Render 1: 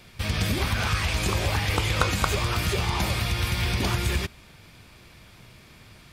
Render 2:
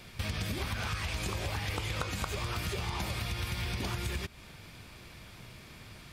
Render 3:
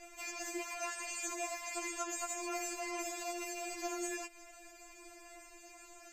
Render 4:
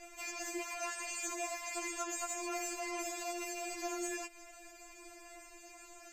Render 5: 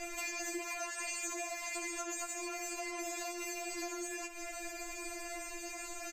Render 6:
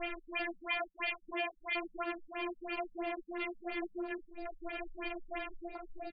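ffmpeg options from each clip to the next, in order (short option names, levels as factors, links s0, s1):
-af "acompressor=threshold=0.0251:ratio=6"
-af "superequalizer=8b=2.51:13b=0.316:15b=3.55:16b=0.355,afftfilt=real='re*4*eq(mod(b,16),0)':imag='im*4*eq(mod(b,16),0)':win_size=2048:overlap=0.75,volume=0.794"
-af "asoftclip=type=tanh:threshold=0.0355,volume=1.12"
-filter_complex "[0:a]acompressor=threshold=0.00398:ratio=12,asplit=2[s0][s1];[s1]aecho=0:1:15|70:0.266|0.237[s2];[s0][s2]amix=inputs=2:normalize=0,volume=3.35"
-af "afwtdn=0.00631,crystalizer=i=4:c=0,afftfilt=real='re*lt(b*sr/1024,200*pow(4900/200,0.5+0.5*sin(2*PI*3*pts/sr)))':imag='im*lt(b*sr/1024,200*pow(4900/200,0.5+0.5*sin(2*PI*3*pts/sr)))':win_size=1024:overlap=0.75,volume=1.58"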